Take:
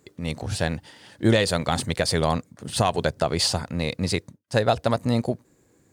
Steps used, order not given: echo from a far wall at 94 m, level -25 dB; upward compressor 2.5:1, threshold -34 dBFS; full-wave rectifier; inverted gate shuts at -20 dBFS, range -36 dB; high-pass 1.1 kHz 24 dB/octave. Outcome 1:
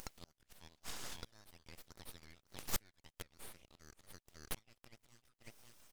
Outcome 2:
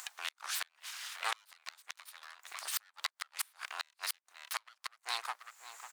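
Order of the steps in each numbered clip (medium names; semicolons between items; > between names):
echo from a far wall > inverted gate > upward compressor > high-pass > full-wave rectifier; echo from a far wall > full-wave rectifier > high-pass > inverted gate > upward compressor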